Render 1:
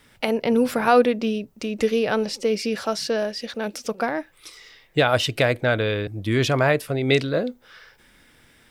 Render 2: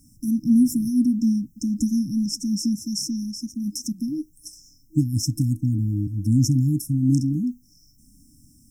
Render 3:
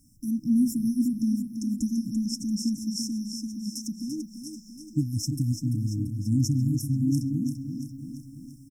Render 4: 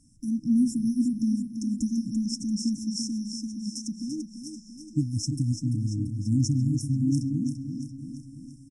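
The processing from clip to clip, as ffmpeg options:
ffmpeg -i in.wav -af "afftfilt=real='re*(1-between(b*sr/4096,320,5200))':imag='im*(1-between(b*sr/4096,320,5200))':win_size=4096:overlap=0.75,volume=5.5dB" out.wav
ffmpeg -i in.wav -af "aecho=1:1:340|680|1020|1360|1700|2040|2380:0.398|0.231|0.134|0.0777|0.0451|0.0261|0.0152,volume=-5.5dB" out.wav
ffmpeg -i in.wav -af "aresample=22050,aresample=44100" out.wav

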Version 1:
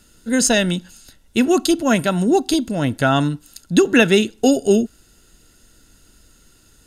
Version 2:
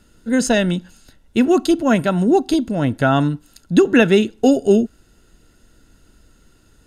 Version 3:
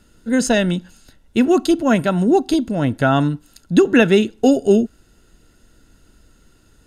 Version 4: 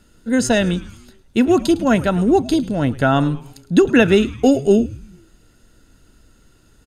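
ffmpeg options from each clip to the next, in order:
ffmpeg -i in.wav -af "highshelf=frequency=3000:gain=-10.5,volume=1.5dB" out.wav
ffmpeg -i in.wav -af anull out.wav
ffmpeg -i in.wav -filter_complex "[0:a]asplit=5[link_01][link_02][link_03][link_04][link_05];[link_02]adelay=107,afreqshift=-140,volume=-17.5dB[link_06];[link_03]adelay=214,afreqshift=-280,volume=-23.7dB[link_07];[link_04]adelay=321,afreqshift=-420,volume=-29.9dB[link_08];[link_05]adelay=428,afreqshift=-560,volume=-36.1dB[link_09];[link_01][link_06][link_07][link_08][link_09]amix=inputs=5:normalize=0" out.wav

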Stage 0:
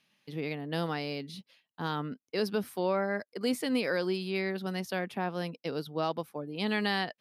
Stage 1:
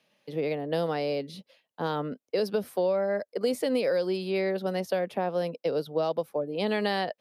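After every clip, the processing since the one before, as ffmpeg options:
ffmpeg -i in.wav -filter_complex "[0:a]equalizer=frequency=550:width_type=o:width=0.95:gain=14,acrossover=split=180|3000[link_01][link_02][link_03];[link_02]acompressor=threshold=-24dB:ratio=6[link_04];[link_01][link_04][link_03]amix=inputs=3:normalize=0" out.wav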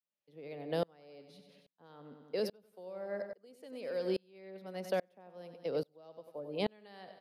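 ffmpeg -i in.wav -af "aecho=1:1:94|188|282|376|470:0.266|0.133|0.0665|0.0333|0.0166,aeval=exprs='val(0)*pow(10,-34*if(lt(mod(-1.2*n/s,1),2*abs(-1.2)/1000),1-mod(-1.2*n/s,1)/(2*abs(-1.2)/1000),(mod(-1.2*n/s,1)-2*abs(-1.2)/1000)/(1-2*abs(-1.2)/1000))/20)':channel_layout=same,volume=-3dB" out.wav

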